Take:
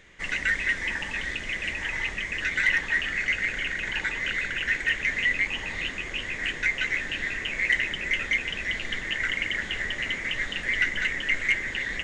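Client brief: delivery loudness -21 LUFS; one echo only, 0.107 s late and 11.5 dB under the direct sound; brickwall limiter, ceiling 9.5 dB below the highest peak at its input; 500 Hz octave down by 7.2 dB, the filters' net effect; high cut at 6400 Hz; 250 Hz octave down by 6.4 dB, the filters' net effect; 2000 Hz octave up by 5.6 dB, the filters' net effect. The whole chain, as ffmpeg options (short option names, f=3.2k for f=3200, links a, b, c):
-af "lowpass=6.4k,equalizer=f=250:t=o:g=-6.5,equalizer=f=500:t=o:g=-7.5,equalizer=f=2k:t=o:g=6.5,alimiter=limit=-14.5dB:level=0:latency=1,aecho=1:1:107:0.266,volume=2dB"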